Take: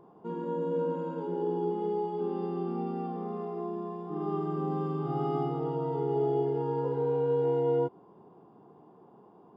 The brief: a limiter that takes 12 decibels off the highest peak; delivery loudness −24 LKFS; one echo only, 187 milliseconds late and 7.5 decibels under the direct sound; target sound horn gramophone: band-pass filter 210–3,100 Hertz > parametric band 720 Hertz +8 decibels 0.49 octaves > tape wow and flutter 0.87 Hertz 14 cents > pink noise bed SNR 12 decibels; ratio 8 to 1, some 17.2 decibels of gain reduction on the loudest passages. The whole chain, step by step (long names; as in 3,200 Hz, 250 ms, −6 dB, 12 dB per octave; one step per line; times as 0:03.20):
downward compressor 8 to 1, threshold −43 dBFS
brickwall limiter −44.5 dBFS
band-pass filter 210–3,100 Hz
parametric band 720 Hz +8 dB 0.49 octaves
single-tap delay 187 ms −7.5 dB
tape wow and flutter 0.87 Hz 14 cents
pink noise bed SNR 12 dB
level +26.5 dB